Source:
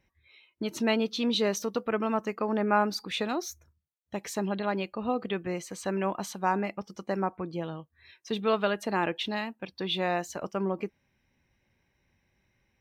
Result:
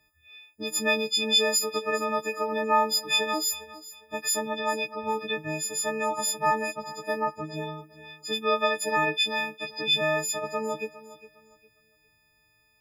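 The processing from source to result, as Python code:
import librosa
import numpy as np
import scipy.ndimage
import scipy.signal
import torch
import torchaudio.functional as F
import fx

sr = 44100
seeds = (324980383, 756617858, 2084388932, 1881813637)

y = fx.freq_snap(x, sr, grid_st=6)
y = fx.peak_eq(y, sr, hz=240.0, db=-11.5, octaves=0.25)
y = fx.echo_feedback(y, sr, ms=407, feedback_pct=27, wet_db=-17.0)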